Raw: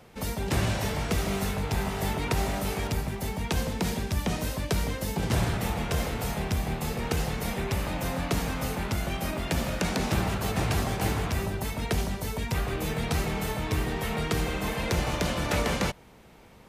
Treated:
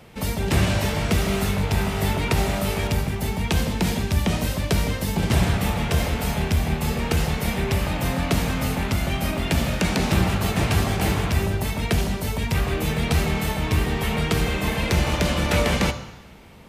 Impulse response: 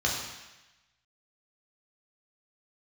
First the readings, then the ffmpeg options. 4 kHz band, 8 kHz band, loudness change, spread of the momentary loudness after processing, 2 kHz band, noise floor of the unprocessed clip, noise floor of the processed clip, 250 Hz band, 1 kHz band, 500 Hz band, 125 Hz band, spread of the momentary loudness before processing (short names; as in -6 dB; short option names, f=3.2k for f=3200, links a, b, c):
+6.5 dB, +4.5 dB, +6.0 dB, 4 LU, +6.0 dB, -52 dBFS, -35 dBFS, +6.5 dB, +4.5 dB, +5.0 dB, +7.0 dB, 4 LU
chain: -filter_complex "[0:a]asplit=2[a][b];[1:a]atrim=start_sample=2205[c];[b][c]afir=irnorm=-1:irlink=0,volume=-19dB[d];[a][d]amix=inputs=2:normalize=0,volume=5.5dB"